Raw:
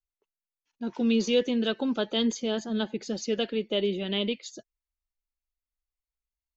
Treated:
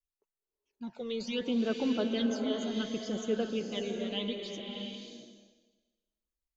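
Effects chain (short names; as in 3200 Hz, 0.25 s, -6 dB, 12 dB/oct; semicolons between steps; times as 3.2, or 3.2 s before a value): phaser stages 12, 0.69 Hz, lowest notch 260–4600 Hz; bloom reverb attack 0.64 s, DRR 2.5 dB; gain -4 dB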